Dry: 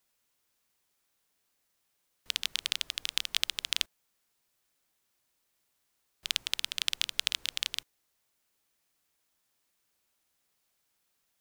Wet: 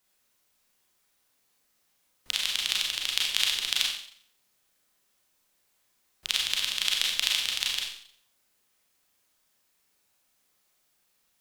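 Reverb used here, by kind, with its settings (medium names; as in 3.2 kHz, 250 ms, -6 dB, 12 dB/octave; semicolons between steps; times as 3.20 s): Schroeder reverb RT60 0.58 s, combs from 30 ms, DRR -2 dB; trim +1.5 dB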